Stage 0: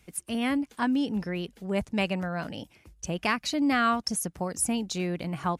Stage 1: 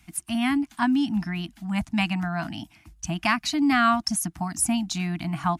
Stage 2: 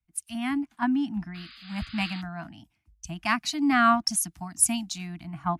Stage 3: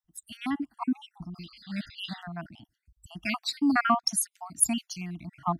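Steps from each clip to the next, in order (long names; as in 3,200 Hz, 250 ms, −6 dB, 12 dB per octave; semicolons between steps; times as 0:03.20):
Chebyshev band-stop filter 330–660 Hz, order 4; level +4.5 dB
sound drawn into the spectrogram noise, 0:01.34–0:02.22, 1,100–5,000 Hz −36 dBFS; multiband upward and downward expander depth 100%; level −4.5 dB
time-frequency cells dropped at random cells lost 53%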